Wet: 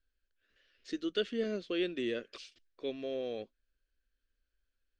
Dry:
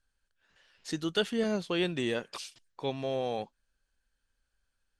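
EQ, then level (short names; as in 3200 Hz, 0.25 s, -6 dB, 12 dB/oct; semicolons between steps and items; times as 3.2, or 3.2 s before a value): air absorption 150 m; fixed phaser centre 360 Hz, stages 4; -1.5 dB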